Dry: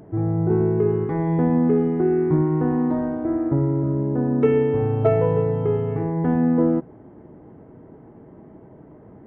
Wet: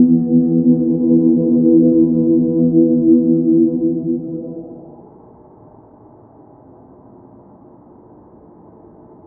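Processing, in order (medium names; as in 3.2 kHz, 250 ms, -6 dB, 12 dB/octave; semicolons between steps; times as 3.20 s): Paulstretch 12×, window 0.25 s, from 6.47 s; low-pass sweep 350 Hz -> 990 Hz, 4.16–5.15 s; trim +1 dB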